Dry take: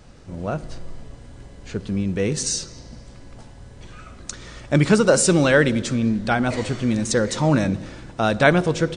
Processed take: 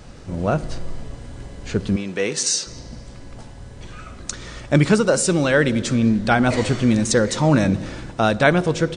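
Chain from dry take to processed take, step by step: gain riding within 4 dB 0.5 s; 1.96–2.67 s: frequency weighting A; trim +2 dB

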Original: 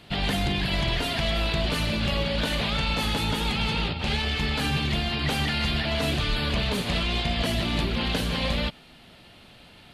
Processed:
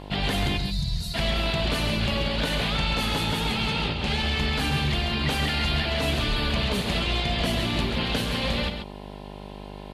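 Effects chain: mains buzz 50 Hz, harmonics 21, -40 dBFS -3 dB/octave; time-frequency box 0.57–1.14 s, 200–3600 Hz -21 dB; delay 135 ms -7.5 dB

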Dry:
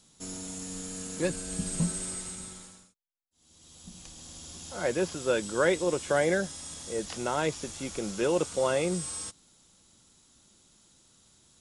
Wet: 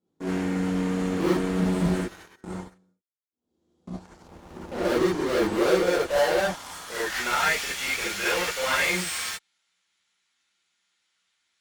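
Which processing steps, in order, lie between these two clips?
Chebyshev shaper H 2 -9 dB, 8 -26 dB, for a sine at -12 dBFS; 2.00–2.44 s: ring modulator 1.7 kHz; band-pass sweep 350 Hz -> 2.2 kHz, 5.45–7.36 s; in parallel at -11 dB: fuzz box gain 52 dB, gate -56 dBFS; on the sum: gated-style reverb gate 90 ms rising, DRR -7.5 dB; 4.28–4.85 s: sliding maximum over 9 samples; trim -7 dB

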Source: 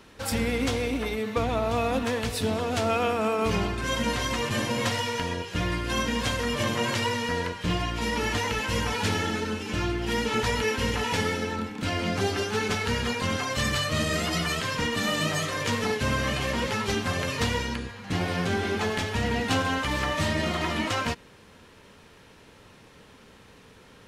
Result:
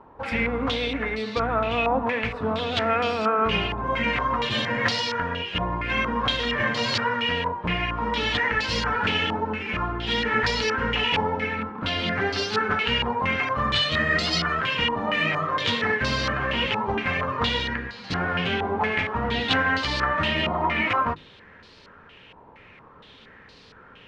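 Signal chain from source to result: hum notches 50/100/150/200/250/300/350 Hz; step-sequenced low-pass 4.3 Hz 930–4500 Hz

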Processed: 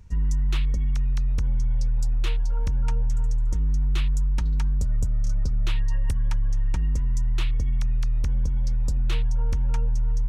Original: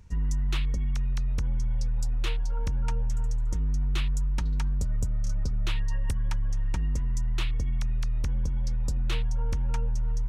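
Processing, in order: bass shelf 110 Hz +5 dB

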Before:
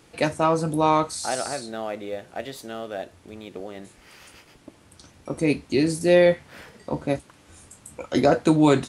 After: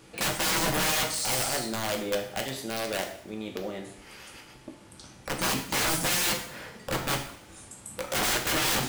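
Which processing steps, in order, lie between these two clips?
integer overflow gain 23 dB; two-slope reverb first 0.62 s, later 1.6 s, from -23 dB, DRR 2.5 dB

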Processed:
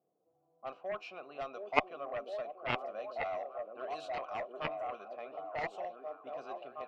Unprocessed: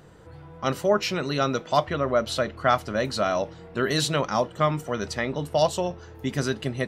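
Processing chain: high-pass 200 Hz 12 dB/octave; repeats whose band climbs or falls 717 ms, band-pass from 340 Hz, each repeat 0.7 oct, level -1 dB; level-controlled noise filter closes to 300 Hz, open at -19.5 dBFS; vowel filter a; Chebyshev shaper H 3 -7 dB, 6 -34 dB, 8 -38 dB, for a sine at -13 dBFS; trim +4.5 dB

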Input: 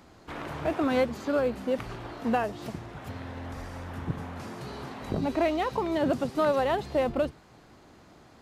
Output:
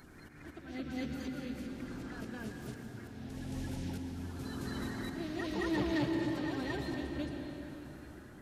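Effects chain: coarse spectral quantiser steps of 30 dB; high-order bell 750 Hz -12.5 dB; slow attack 738 ms; reverse echo 221 ms -3.5 dB; on a send at -3 dB: reverberation RT60 4.0 s, pre-delay 104 ms; on the sum: saturation -27 dBFS, distortion -18 dB; trim +2 dB

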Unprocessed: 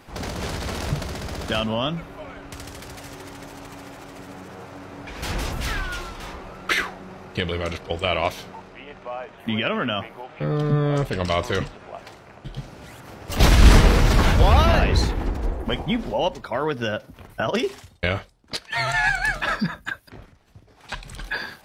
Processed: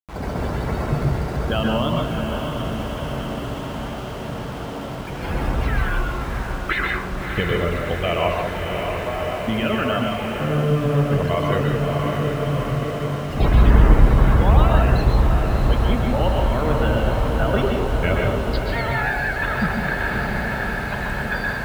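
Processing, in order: loudest bins only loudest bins 64; echo that smears into a reverb 626 ms, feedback 77%, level -7 dB; gain riding within 3 dB 0.5 s; word length cut 6-bit, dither none; treble shelf 3.4 kHz -10.5 dB; reverberation RT60 0.50 s, pre-delay 119 ms, DRR 1 dB

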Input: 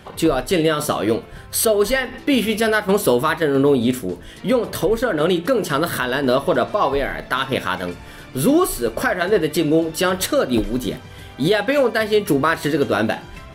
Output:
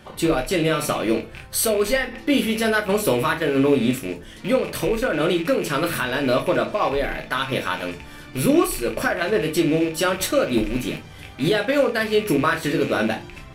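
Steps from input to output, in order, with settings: rattle on loud lows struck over -33 dBFS, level -20 dBFS; on a send: peaking EQ 7.1 kHz +7 dB 2.2 oct + reverberation RT60 0.25 s, pre-delay 3 ms, DRR 4 dB; on the sum: trim -4 dB

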